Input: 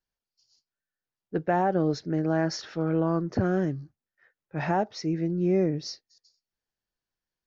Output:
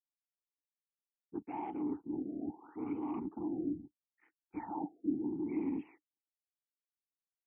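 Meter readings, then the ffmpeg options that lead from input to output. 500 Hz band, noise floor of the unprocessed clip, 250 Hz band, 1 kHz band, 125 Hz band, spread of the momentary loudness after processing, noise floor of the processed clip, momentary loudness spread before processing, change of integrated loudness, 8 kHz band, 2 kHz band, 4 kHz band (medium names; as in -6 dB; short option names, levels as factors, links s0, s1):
-18.0 dB, under -85 dBFS, -9.0 dB, -14.5 dB, -24.0 dB, 10 LU, under -85 dBFS, 10 LU, -12.0 dB, no reading, -23.0 dB, under -35 dB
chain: -filter_complex "[0:a]highshelf=f=3500:g=-9.5,afreqshift=-41,equalizer=f=1900:w=0.31:g=12,areverse,acompressor=threshold=0.0398:ratio=20,areverse,afftfilt=real='hypot(re,im)*cos(2*PI*random(0))':imag='hypot(re,im)*sin(2*PI*random(1))':win_size=512:overlap=0.75,aresample=16000,asoftclip=type=tanh:threshold=0.0178,aresample=44100,anlmdn=0.0000158,asplit=3[s0][s1][s2];[s0]bandpass=f=300:t=q:w=8,volume=1[s3];[s1]bandpass=f=870:t=q:w=8,volume=0.501[s4];[s2]bandpass=f=2240:t=q:w=8,volume=0.355[s5];[s3][s4][s5]amix=inputs=3:normalize=0,afftfilt=real='re*lt(b*sr/1024,700*pow(3500/700,0.5+0.5*sin(2*PI*0.74*pts/sr)))':imag='im*lt(b*sr/1024,700*pow(3500/700,0.5+0.5*sin(2*PI*0.74*pts/sr)))':win_size=1024:overlap=0.75,volume=4.73"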